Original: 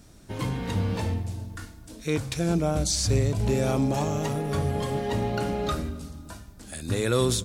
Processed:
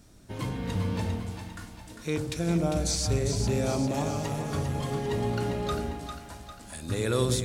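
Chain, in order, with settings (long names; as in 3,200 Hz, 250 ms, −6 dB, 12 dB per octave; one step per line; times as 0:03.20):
echo with a time of its own for lows and highs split 690 Hz, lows 94 ms, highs 400 ms, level −6.5 dB
level −3.5 dB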